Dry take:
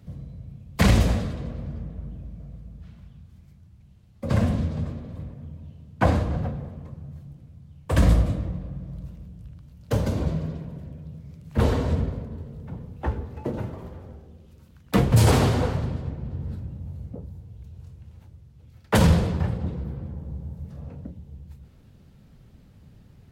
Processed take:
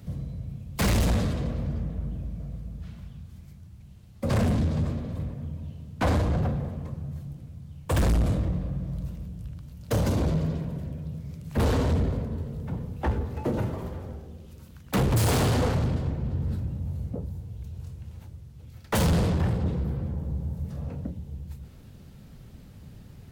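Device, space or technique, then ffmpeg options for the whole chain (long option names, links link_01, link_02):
saturation between pre-emphasis and de-emphasis: -af "highshelf=frequency=2000:gain=11.5,asoftclip=type=tanh:threshold=-23.5dB,highshelf=frequency=2000:gain=-11.5,highshelf=frequency=5700:gain=6,volume=4.5dB"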